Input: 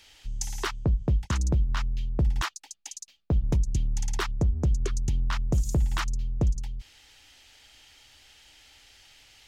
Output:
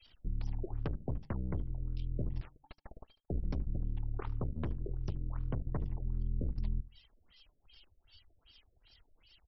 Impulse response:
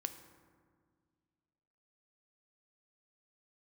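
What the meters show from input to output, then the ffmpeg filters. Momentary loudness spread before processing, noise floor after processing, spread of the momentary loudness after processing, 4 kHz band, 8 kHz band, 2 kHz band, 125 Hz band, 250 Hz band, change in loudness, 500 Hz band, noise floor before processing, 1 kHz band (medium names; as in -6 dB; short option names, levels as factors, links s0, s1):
14 LU, -74 dBFS, 9 LU, -20.5 dB, under -35 dB, -20.5 dB, -10.0 dB, -9.0 dB, -11.0 dB, -8.5 dB, -61 dBFS, -15.0 dB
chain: -filter_complex "[0:a]acrossover=split=910|5000[s0][s1][s2];[s0]acompressor=threshold=0.0562:ratio=4[s3];[s1]acompressor=threshold=0.00447:ratio=4[s4];[s2]acompressor=threshold=0.002:ratio=4[s5];[s3][s4][s5]amix=inputs=3:normalize=0,aemphasis=mode=production:type=50fm,afftfilt=real='re*gte(hypot(re,im),0.00447)':imag='im*gte(hypot(re,im),0.00447)':win_size=1024:overlap=0.75,tiltshelf=f=740:g=4,bandreject=f=145.2:t=h:w=4,bandreject=f=290.4:t=h:w=4,acompressor=threshold=0.0141:ratio=10,asoftclip=type=tanh:threshold=0.0237,flanger=delay=2.5:depth=8.1:regen=59:speed=0.3:shape=triangular,aeval=exprs='0.0141*(cos(1*acos(clip(val(0)/0.0141,-1,1)))-cos(1*PI/2))+0.000501*(cos(2*acos(clip(val(0)/0.0141,-1,1)))-cos(2*PI/2))+0.000158*(cos(3*acos(clip(val(0)/0.0141,-1,1)))-cos(3*PI/2))+0.00355*(cos(4*acos(clip(val(0)/0.0141,-1,1)))-cos(4*PI/2))+0.00316*(cos(7*acos(clip(val(0)/0.0141,-1,1)))-cos(7*PI/2))':c=same,asplit=2[s6][s7];[s7]adelay=74,lowpass=f=4700:p=1,volume=0.112,asplit=2[s8][s9];[s9]adelay=74,lowpass=f=4700:p=1,volume=0.31,asplit=2[s10][s11];[s11]adelay=74,lowpass=f=4700:p=1,volume=0.31[s12];[s8][s10][s12]amix=inputs=3:normalize=0[s13];[s6][s13]amix=inputs=2:normalize=0,afftfilt=real='re*lt(b*sr/1024,640*pow(5900/640,0.5+0.5*sin(2*PI*2.6*pts/sr)))':imag='im*lt(b*sr/1024,640*pow(5900/640,0.5+0.5*sin(2*PI*2.6*pts/sr)))':win_size=1024:overlap=0.75,volume=2.51"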